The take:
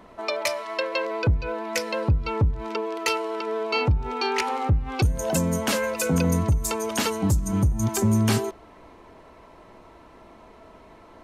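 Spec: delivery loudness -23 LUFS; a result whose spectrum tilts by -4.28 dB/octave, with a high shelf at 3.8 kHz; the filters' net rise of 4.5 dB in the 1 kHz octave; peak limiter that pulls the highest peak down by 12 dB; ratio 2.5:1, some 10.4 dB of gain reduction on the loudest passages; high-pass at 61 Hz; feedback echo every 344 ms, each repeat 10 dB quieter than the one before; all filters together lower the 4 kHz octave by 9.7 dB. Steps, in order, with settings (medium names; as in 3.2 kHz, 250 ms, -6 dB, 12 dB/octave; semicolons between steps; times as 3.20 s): high-pass 61 Hz; peaking EQ 1 kHz +6.5 dB; treble shelf 3.8 kHz -9 dB; peaking EQ 4 kHz -7.5 dB; compression 2.5:1, threshold -33 dBFS; peak limiter -29.5 dBFS; feedback delay 344 ms, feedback 32%, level -10 dB; trim +15 dB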